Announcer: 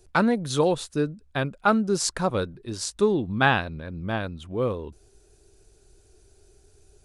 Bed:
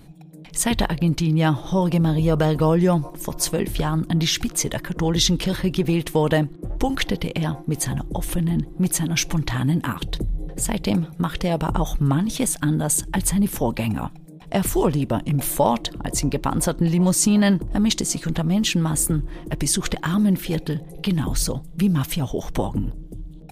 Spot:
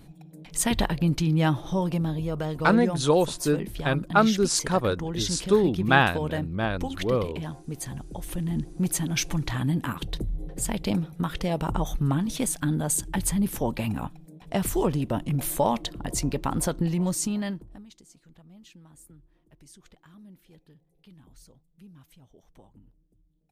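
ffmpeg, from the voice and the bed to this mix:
ffmpeg -i stem1.wav -i stem2.wav -filter_complex "[0:a]adelay=2500,volume=1dB[link_01];[1:a]volume=2.5dB,afade=type=out:start_time=1.43:duration=0.87:silence=0.421697,afade=type=in:start_time=8.13:duration=0.59:silence=0.501187,afade=type=out:start_time=16.72:duration=1.13:silence=0.0501187[link_02];[link_01][link_02]amix=inputs=2:normalize=0" out.wav

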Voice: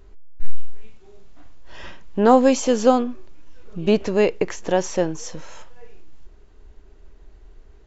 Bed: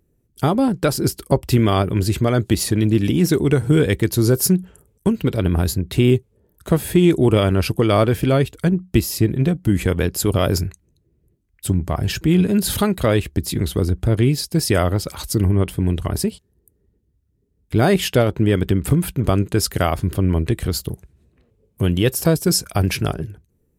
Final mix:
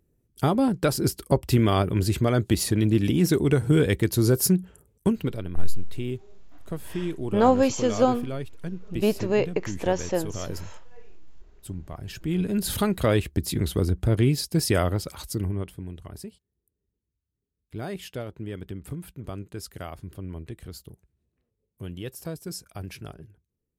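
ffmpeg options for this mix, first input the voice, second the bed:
ffmpeg -i stem1.wav -i stem2.wav -filter_complex "[0:a]adelay=5150,volume=-5dB[link_01];[1:a]volume=7.5dB,afade=type=out:start_time=5.1:duration=0.35:silence=0.251189,afade=type=in:start_time=12.05:duration=0.94:silence=0.251189,afade=type=out:start_time=14.66:duration=1.21:silence=0.199526[link_02];[link_01][link_02]amix=inputs=2:normalize=0" out.wav

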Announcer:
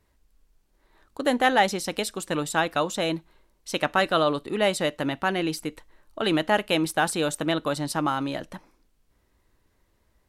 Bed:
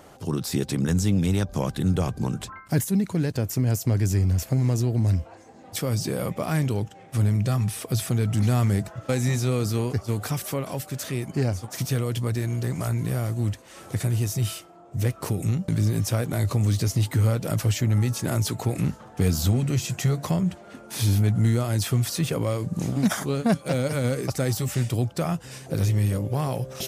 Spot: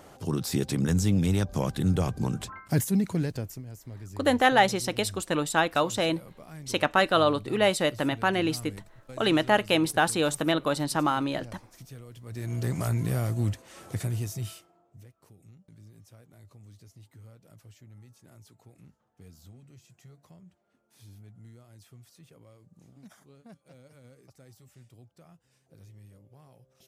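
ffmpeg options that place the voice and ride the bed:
ffmpeg -i stem1.wav -i stem2.wav -filter_complex "[0:a]adelay=3000,volume=0dB[link_01];[1:a]volume=16.5dB,afade=type=out:start_time=3.11:duration=0.52:silence=0.125893,afade=type=in:start_time=12.25:duration=0.43:silence=0.11885,afade=type=out:start_time=13.4:duration=1.66:silence=0.0398107[link_02];[link_01][link_02]amix=inputs=2:normalize=0" out.wav

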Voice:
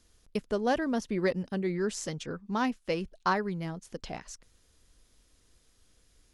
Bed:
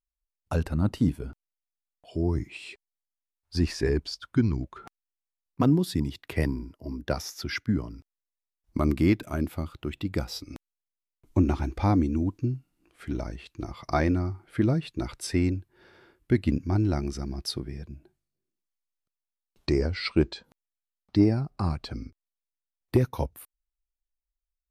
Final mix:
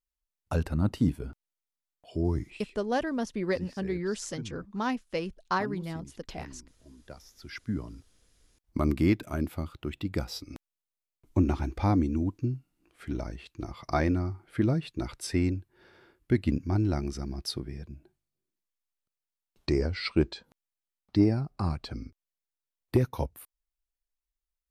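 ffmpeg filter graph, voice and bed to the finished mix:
ffmpeg -i stem1.wav -i stem2.wav -filter_complex "[0:a]adelay=2250,volume=-1dB[link_01];[1:a]volume=14.5dB,afade=type=out:start_time=2.32:duration=0.45:silence=0.149624,afade=type=in:start_time=7.34:duration=0.69:silence=0.158489[link_02];[link_01][link_02]amix=inputs=2:normalize=0" out.wav

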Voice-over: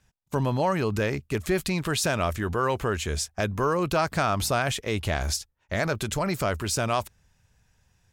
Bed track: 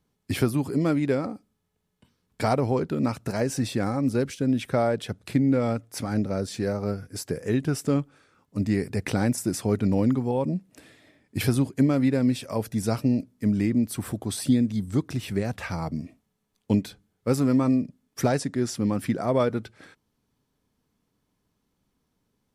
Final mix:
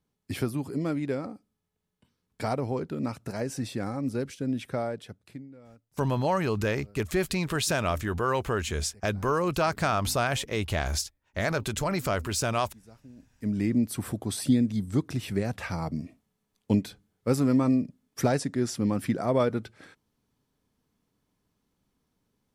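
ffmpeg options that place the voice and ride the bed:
ffmpeg -i stem1.wav -i stem2.wav -filter_complex "[0:a]adelay=5650,volume=-1.5dB[link_01];[1:a]volume=20dB,afade=type=out:start_time=4.67:duration=0.82:silence=0.0841395,afade=type=in:start_time=13.16:duration=0.57:silence=0.0501187[link_02];[link_01][link_02]amix=inputs=2:normalize=0" out.wav

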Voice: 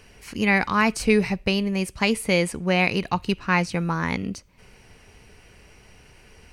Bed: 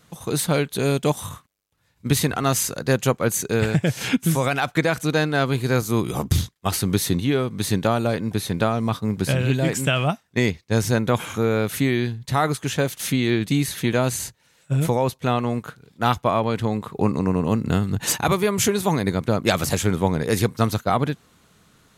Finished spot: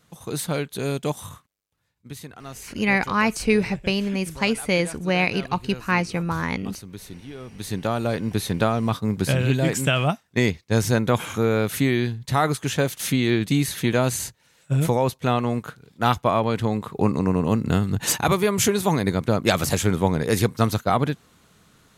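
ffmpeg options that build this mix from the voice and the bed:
ffmpeg -i stem1.wav -i stem2.wav -filter_complex "[0:a]adelay=2400,volume=-0.5dB[link_01];[1:a]volume=13dB,afade=type=out:start_time=1.76:duration=0.28:silence=0.223872,afade=type=in:start_time=7.36:duration=0.95:silence=0.125893[link_02];[link_01][link_02]amix=inputs=2:normalize=0" out.wav

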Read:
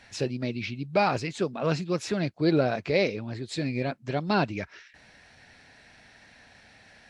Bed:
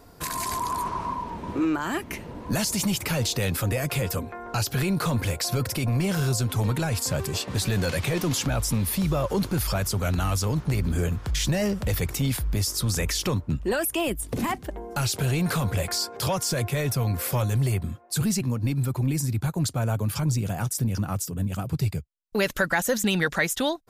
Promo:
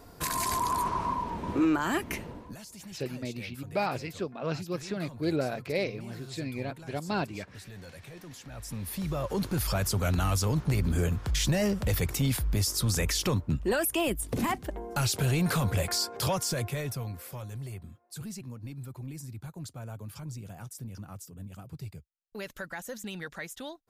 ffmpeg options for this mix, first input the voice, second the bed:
ffmpeg -i stem1.wav -i stem2.wav -filter_complex "[0:a]adelay=2800,volume=-6dB[link_01];[1:a]volume=18.5dB,afade=type=out:start_time=2.18:duration=0.37:silence=0.0944061,afade=type=in:start_time=8.46:duration=1.43:silence=0.112202,afade=type=out:start_time=16.19:duration=1.04:silence=0.211349[link_02];[link_01][link_02]amix=inputs=2:normalize=0" out.wav

